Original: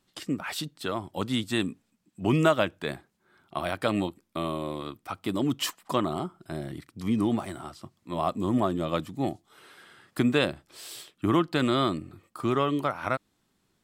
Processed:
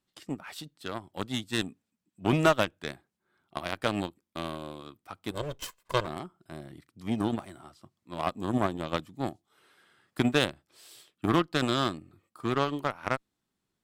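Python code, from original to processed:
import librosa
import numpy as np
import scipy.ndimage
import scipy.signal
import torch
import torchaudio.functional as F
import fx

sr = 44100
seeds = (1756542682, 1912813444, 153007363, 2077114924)

y = fx.lower_of_two(x, sr, delay_ms=1.9, at=(5.31, 6.07))
y = fx.cheby_harmonics(y, sr, harmonics=(7,), levels_db=(-20,), full_scale_db=-8.5)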